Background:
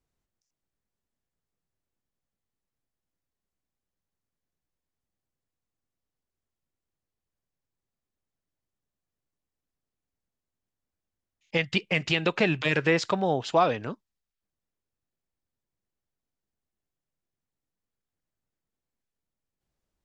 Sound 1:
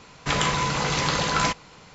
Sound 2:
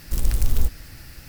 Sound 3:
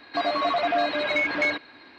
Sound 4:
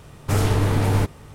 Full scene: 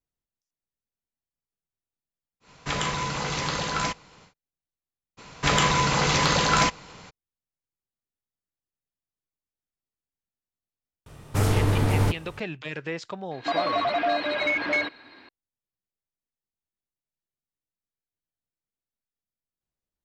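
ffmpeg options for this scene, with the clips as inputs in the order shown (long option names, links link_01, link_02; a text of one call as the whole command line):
ffmpeg -i bed.wav -i cue0.wav -i cue1.wav -i cue2.wav -i cue3.wav -filter_complex "[1:a]asplit=2[link_01][link_02];[0:a]volume=-9.5dB[link_03];[link_02]acontrast=64[link_04];[link_01]atrim=end=1.94,asetpts=PTS-STARTPTS,volume=-4.5dB,afade=type=in:duration=0.1,afade=type=out:start_time=1.84:duration=0.1,adelay=2400[link_05];[link_04]atrim=end=1.94,asetpts=PTS-STARTPTS,volume=-4dB,afade=type=in:duration=0.02,afade=type=out:start_time=1.92:duration=0.02,adelay=227997S[link_06];[4:a]atrim=end=1.34,asetpts=PTS-STARTPTS,volume=-2.5dB,afade=type=in:duration=0.004:curve=hsin,afade=type=out:start_time=1.336:duration=0.004:curve=hsin,adelay=487746S[link_07];[3:a]atrim=end=1.98,asetpts=PTS-STARTPTS,volume=-1dB,afade=type=in:duration=0.004:curve=hsin,afade=type=out:start_time=1.976:duration=0.004:curve=hsin,adelay=13310[link_08];[link_03][link_05][link_06][link_07][link_08]amix=inputs=5:normalize=0" out.wav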